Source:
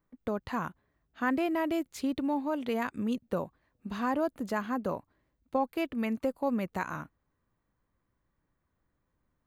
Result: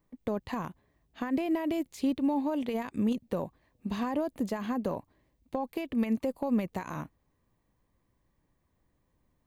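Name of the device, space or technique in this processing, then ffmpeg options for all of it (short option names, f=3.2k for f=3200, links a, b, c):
de-esser from a sidechain: -filter_complex "[0:a]equalizer=f=1.4k:t=o:w=0.38:g=-10.5,asplit=2[a][b];[b]highpass=f=4.5k:p=1,apad=whole_len=417332[c];[a][c]sidechaincompress=threshold=-47dB:ratio=10:attack=0.71:release=60,volume=5dB"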